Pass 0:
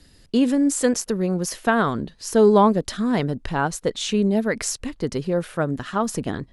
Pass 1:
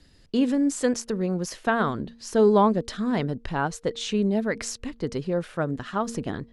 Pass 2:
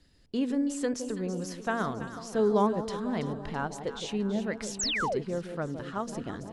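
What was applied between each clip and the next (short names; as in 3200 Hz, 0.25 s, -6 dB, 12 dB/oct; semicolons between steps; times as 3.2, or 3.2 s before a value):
Bessel low-pass 6800 Hz, order 2; de-hum 231.8 Hz, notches 2; gain -3.5 dB
echo with dull and thin repeats by turns 0.165 s, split 880 Hz, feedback 75%, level -8.5 dB; painted sound fall, 4.79–5.19, 340–8400 Hz -23 dBFS; gain -7 dB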